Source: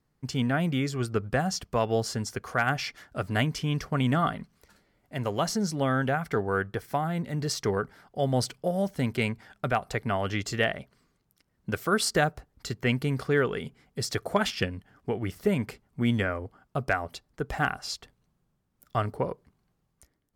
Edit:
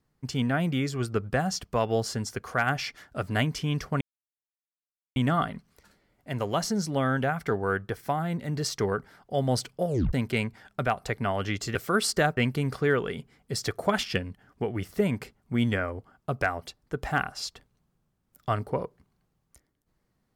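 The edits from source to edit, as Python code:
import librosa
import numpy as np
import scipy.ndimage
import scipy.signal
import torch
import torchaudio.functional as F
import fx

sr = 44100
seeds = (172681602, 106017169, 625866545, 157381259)

y = fx.edit(x, sr, fx.insert_silence(at_s=4.01, length_s=1.15),
    fx.tape_stop(start_s=8.72, length_s=0.26),
    fx.cut(start_s=10.6, length_s=1.13),
    fx.cut(start_s=12.35, length_s=0.49), tone=tone)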